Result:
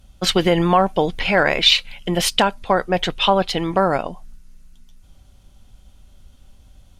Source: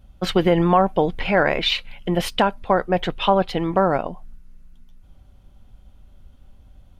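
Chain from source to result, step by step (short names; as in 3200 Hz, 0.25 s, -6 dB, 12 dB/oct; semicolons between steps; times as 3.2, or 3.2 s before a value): bell 7200 Hz +13 dB 2.4 oct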